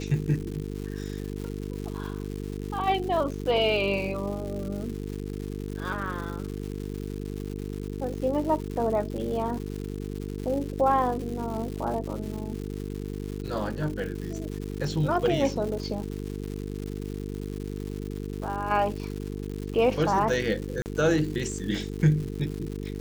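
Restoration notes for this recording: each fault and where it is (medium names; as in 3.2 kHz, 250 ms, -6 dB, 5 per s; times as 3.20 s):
buzz 50 Hz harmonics 9 -34 dBFS
crackle 260 per s -34 dBFS
20.82–20.86 s: dropout 39 ms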